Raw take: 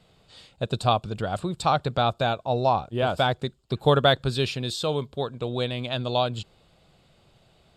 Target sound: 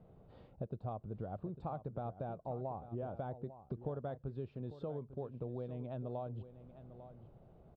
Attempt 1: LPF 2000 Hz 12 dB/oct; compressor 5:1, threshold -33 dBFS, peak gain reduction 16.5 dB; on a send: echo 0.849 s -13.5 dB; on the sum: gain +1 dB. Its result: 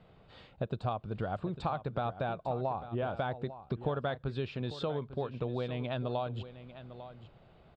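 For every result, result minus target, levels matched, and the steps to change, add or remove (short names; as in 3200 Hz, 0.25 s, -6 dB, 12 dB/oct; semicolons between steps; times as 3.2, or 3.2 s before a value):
2000 Hz band +11.5 dB; compressor: peak gain reduction -6 dB
change: LPF 670 Hz 12 dB/oct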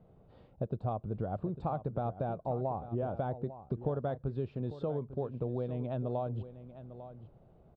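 compressor: peak gain reduction -7 dB
change: compressor 5:1, threshold -42 dBFS, peak gain reduction 23 dB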